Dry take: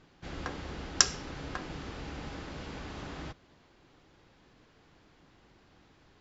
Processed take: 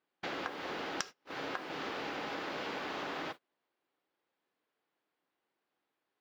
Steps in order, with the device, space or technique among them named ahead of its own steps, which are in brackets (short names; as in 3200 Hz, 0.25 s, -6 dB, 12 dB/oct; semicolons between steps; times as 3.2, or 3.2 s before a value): baby monitor (BPF 390–4200 Hz; compressor 12:1, threshold -48 dBFS, peak gain reduction 27 dB; white noise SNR 30 dB; gate -56 dBFS, range -33 dB); gain +12.5 dB